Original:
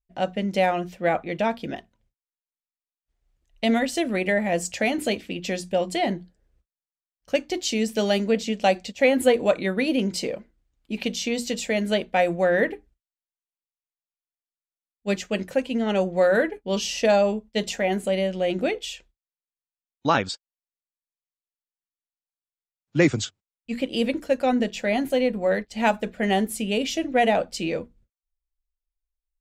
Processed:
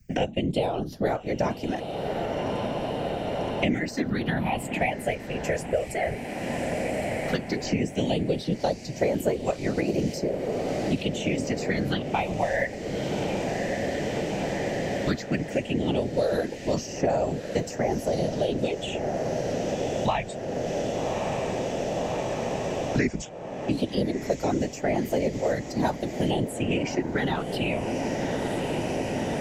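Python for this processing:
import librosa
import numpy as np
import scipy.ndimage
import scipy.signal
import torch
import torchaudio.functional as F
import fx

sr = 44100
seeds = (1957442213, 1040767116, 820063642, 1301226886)

y = fx.whisperise(x, sr, seeds[0])
y = fx.phaser_stages(y, sr, stages=6, low_hz=250.0, high_hz=3500.0, hz=0.13, feedback_pct=25)
y = fx.echo_diffused(y, sr, ms=1160, feedback_pct=79, wet_db=-15.0)
y = fx.band_squash(y, sr, depth_pct=100)
y = y * 10.0 ** (-2.0 / 20.0)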